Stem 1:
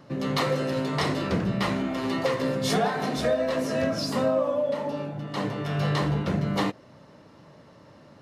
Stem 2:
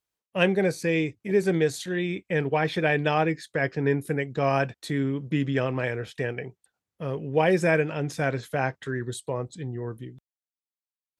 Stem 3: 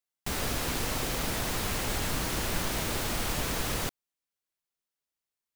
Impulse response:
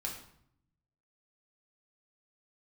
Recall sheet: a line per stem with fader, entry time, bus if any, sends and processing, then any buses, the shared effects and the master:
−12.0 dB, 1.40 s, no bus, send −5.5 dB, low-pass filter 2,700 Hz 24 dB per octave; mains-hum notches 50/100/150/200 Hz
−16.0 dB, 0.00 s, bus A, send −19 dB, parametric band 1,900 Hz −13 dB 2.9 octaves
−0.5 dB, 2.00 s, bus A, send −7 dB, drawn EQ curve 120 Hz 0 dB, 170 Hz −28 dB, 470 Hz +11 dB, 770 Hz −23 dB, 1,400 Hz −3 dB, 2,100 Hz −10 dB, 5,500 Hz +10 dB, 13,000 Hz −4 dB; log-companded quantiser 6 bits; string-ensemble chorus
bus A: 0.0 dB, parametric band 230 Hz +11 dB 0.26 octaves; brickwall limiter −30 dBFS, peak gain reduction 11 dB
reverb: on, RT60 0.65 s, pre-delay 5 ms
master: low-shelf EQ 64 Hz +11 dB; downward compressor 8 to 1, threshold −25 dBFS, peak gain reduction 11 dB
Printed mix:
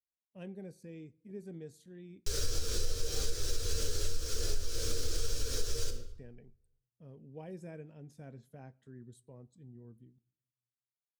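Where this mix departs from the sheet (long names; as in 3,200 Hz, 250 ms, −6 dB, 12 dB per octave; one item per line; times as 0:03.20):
stem 1: muted
stem 2 −16.0 dB → −22.0 dB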